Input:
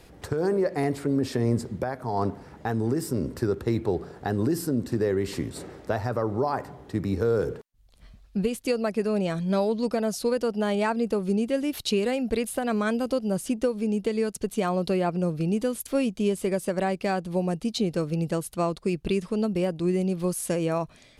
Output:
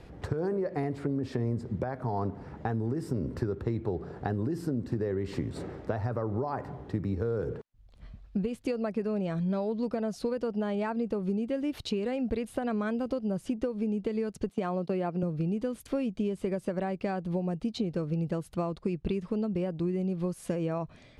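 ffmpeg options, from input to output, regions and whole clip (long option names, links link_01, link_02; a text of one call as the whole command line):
ffmpeg -i in.wav -filter_complex "[0:a]asettb=1/sr,asplit=3[link_01][link_02][link_03];[link_01]atrim=end=14.494[link_04];[link_02]atrim=start=14.49:end=15.23,asetpts=PTS-STARTPTS,afade=type=in:duration=0.004:curve=qsin,afade=type=out:start_time=0.736:duration=0.004:curve=qsin,agate=range=-19dB:threshold=-34dB:ratio=16:release=100:detection=peak,highpass=160,acompressor=mode=upward:threshold=-41dB:ratio=2.5:attack=3.2:release=140:knee=2.83:detection=peak[link_05];[link_03]atrim=start=15.226[link_06];[link_04][link_05]acrossfade=duration=0.004:curve1=hsin:curve2=qsin[link_07];[link_07][link_06]acrossfade=duration=0.004:curve1=qsin:curve2=hsin,equalizer=frequency=100:width=0.69:gain=4.5,acompressor=threshold=-28dB:ratio=6,aemphasis=mode=reproduction:type=75fm" out.wav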